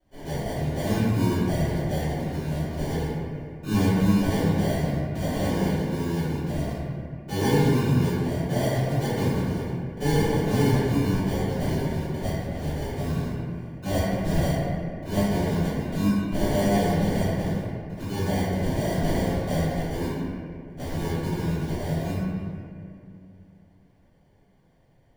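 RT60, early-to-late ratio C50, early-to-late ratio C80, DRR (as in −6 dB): 2.5 s, −4.5 dB, −1.5 dB, −17.0 dB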